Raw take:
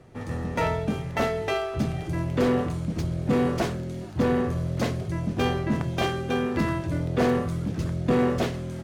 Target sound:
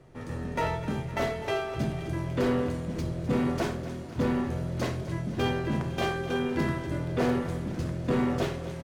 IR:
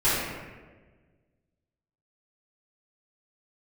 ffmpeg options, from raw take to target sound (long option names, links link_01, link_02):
-filter_complex "[0:a]aecho=1:1:254|508|762|1016|1270|1524:0.211|0.125|0.0736|0.0434|0.0256|0.0151,asplit=2[link_01][link_02];[1:a]atrim=start_sample=2205,atrim=end_sample=4410[link_03];[link_02][link_03]afir=irnorm=-1:irlink=0,volume=-18dB[link_04];[link_01][link_04]amix=inputs=2:normalize=0,volume=-5dB"